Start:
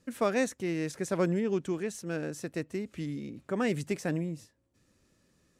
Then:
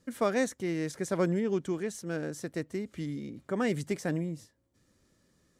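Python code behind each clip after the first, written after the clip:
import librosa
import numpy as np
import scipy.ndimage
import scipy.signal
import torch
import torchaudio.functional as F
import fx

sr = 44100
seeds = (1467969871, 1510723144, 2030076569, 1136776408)

y = fx.notch(x, sr, hz=2600.0, q=9.1)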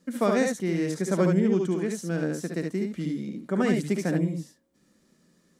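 y = fx.low_shelf_res(x, sr, hz=140.0, db=-8.0, q=3.0)
y = fx.room_early_taps(y, sr, ms=(59, 72), db=(-9.0, -4.5))
y = y * 10.0 ** (2.0 / 20.0)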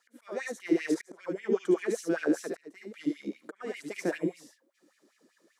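y = fx.auto_swell(x, sr, attack_ms=643.0)
y = fx.filter_lfo_highpass(y, sr, shape='sine', hz=5.1, low_hz=290.0, high_hz=2600.0, q=4.4)
y = y * 10.0 ** (-3.5 / 20.0)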